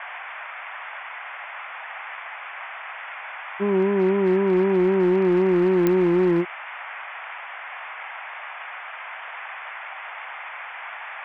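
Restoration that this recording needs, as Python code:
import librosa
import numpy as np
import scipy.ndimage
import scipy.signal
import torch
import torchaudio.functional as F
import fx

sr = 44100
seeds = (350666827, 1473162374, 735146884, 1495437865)

y = fx.fix_declip(x, sr, threshold_db=-13.5)
y = fx.fix_declick_ar(y, sr, threshold=10.0)
y = fx.noise_reduce(y, sr, print_start_s=8.5, print_end_s=9.0, reduce_db=30.0)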